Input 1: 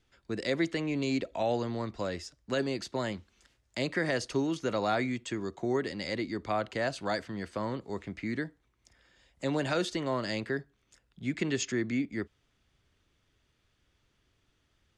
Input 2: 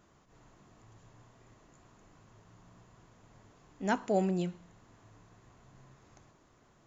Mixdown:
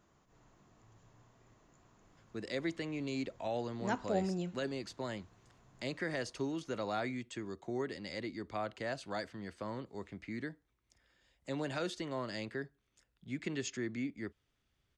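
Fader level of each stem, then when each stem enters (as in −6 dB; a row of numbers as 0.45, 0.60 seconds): −7.5, −5.0 decibels; 2.05, 0.00 seconds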